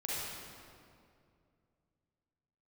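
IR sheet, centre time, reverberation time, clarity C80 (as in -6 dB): 157 ms, 2.4 s, -2.0 dB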